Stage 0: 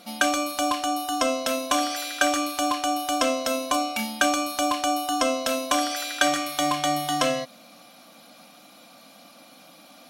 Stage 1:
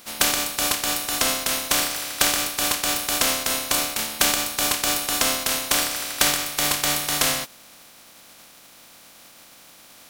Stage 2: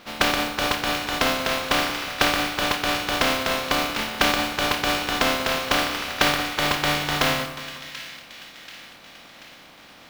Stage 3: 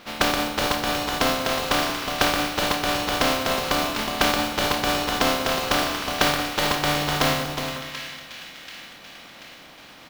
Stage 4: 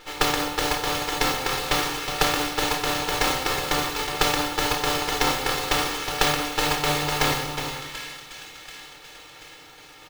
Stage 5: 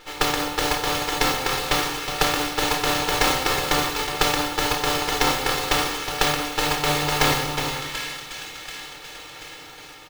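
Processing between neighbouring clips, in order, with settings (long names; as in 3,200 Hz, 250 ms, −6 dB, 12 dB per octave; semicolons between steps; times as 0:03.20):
compressing power law on the bin magnitudes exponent 0.24; level +2 dB
high-frequency loss of the air 220 metres; echo with a time of its own for lows and highs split 1,700 Hz, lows 183 ms, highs 735 ms, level −12 dB; noise that follows the level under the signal 14 dB; level +5 dB
dynamic equaliser 2,300 Hz, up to −4 dB, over −33 dBFS, Q 0.97; on a send: single-tap delay 366 ms −9 dB; on the sum: level +1 dB
lower of the sound and its delayed copy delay 2.3 ms; comb filter 6.6 ms, depth 38%
automatic gain control gain up to 5.5 dB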